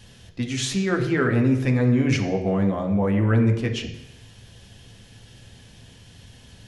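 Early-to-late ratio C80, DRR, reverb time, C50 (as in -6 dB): 10.5 dB, 1.5 dB, 0.85 s, 8.0 dB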